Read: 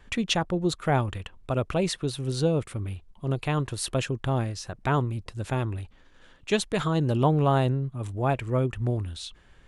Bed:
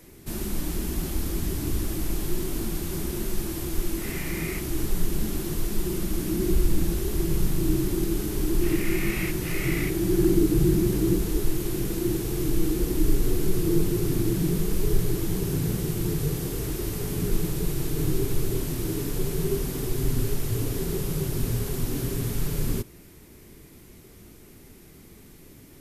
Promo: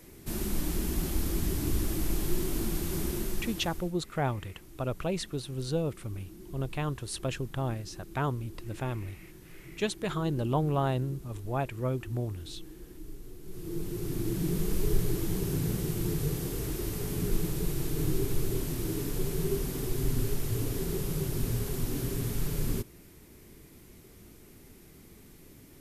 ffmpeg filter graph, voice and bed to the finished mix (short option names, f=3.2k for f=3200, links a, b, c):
-filter_complex "[0:a]adelay=3300,volume=-6dB[a];[1:a]volume=16.5dB,afade=t=out:st=3.08:d=0.85:silence=0.0944061,afade=t=in:st=13.43:d=1.27:silence=0.11885[b];[a][b]amix=inputs=2:normalize=0"